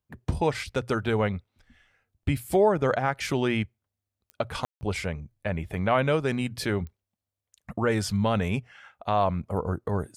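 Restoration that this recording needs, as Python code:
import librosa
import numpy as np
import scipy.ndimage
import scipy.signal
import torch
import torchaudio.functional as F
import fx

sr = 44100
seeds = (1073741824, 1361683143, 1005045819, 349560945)

y = fx.fix_declick_ar(x, sr, threshold=10.0)
y = fx.fix_ambience(y, sr, seeds[0], print_start_s=3.65, print_end_s=4.15, start_s=4.65, end_s=4.81)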